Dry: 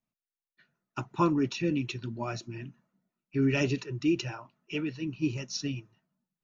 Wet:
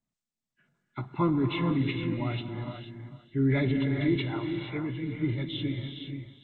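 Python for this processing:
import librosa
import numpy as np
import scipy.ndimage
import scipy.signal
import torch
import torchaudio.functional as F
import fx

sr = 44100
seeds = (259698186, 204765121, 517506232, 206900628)

y = fx.freq_compress(x, sr, knee_hz=1400.0, ratio=1.5)
y = fx.low_shelf(y, sr, hz=230.0, db=7.5)
y = fx.transient(y, sr, attack_db=-1, sustain_db=6)
y = y + 10.0 ** (-13.5 / 20.0) * np.pad(y, (int(448 * sr / 1000.0), 0))[:len(y)]
y = fx.rev_gated(y, sr, seeds[0], gate_ms=500, shape='rising', drr_db=4.5)
y = y * 10.0 ** (-3.0 / 20.0)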